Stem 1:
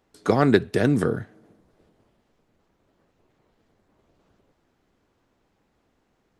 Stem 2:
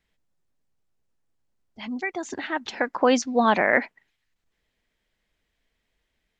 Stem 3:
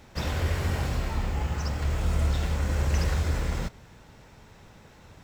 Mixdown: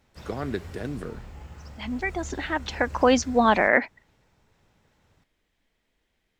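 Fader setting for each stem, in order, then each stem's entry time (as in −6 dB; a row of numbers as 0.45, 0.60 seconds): −13.0, +0.5, −14.0 decibels; 0.00, 0.00, 0.00 seconds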